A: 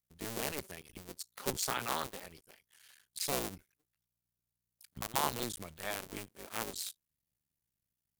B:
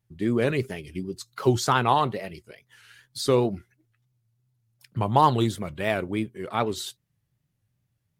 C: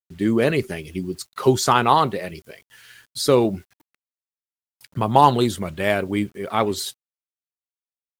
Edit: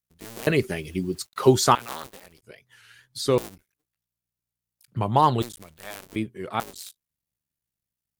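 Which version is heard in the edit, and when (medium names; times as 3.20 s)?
A
0.47–1.75 s: from C
2.43–3.38 s: from B
4.88–5.42 s: from B
6.16–6.60 s: from B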